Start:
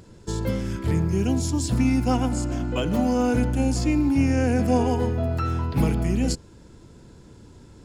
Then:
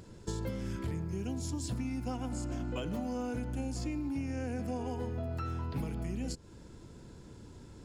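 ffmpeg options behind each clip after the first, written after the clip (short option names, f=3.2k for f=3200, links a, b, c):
-af "acompressor=threshold=-29dB:ratio=12,volume=-3.5dB"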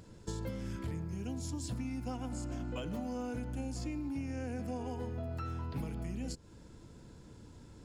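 -af "bandreject=f=380:w=12,volume=-2.5dB"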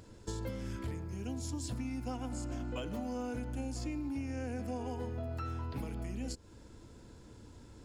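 -af "equalizer=f=160:t=o:w=0.37:g=-10.5,volume=1dB"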